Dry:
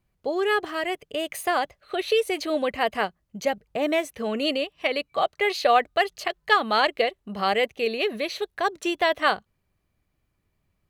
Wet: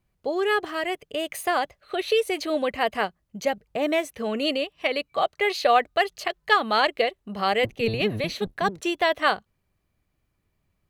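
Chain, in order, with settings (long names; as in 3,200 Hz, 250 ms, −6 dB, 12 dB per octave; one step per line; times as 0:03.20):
0:07.63–0:08.81: sub-octave generator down 1 octave, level +4 dB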